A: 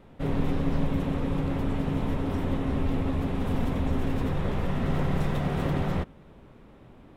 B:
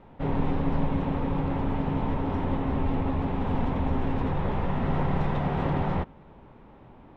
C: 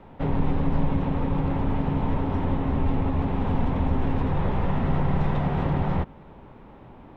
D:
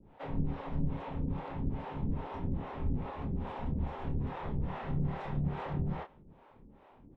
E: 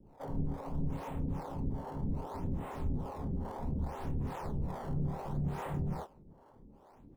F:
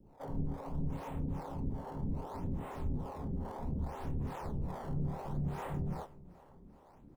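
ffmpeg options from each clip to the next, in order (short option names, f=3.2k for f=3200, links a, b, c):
-af "lowpass=3.2k,equalizer=f=880:t=o:w=0.45:g=8"
-filter_complex "[0:a]acrossover=split=190[a][b];[b]acompressor=threshold=-31dB:ratio=6[c];[a][c]amix=inputs=2:normalize=0,volume=4dB"
-filter_complex "[0:a]acrossover=split=410[a][b];[a]aeval=exprs='val(0)*(1-1/2+1/2*cos(2*PI*2.4*n/s))':c=same[c];[b]aeval=exprs='val(0)*(1-1/2-1/2*cos(2*PI*2.4*n/s))':c=same[d];[c][d]amix=inputs=2:normalize=0,asplit=2[e][f];[f]adelay=28,volume=-6dB[g];[e][g]amix=inputs=2:normalize=0,volume=-7.5dB"
-filter_complex "[0:a]acrossover=split=1400[a][b];[b]acrusher=samples=20:mix=1:aa=0.000001:lfo=1:lforange=32:lforate=0.66[c];[a][c]amix=inputs=2:normalize=0,asoftclip=type=tanh:threshold=-25dB"
-af "aecho=1:1:386|772|1158|1544:0.0944|0.0529|0.0296|0.0166,volume=-1.5dB"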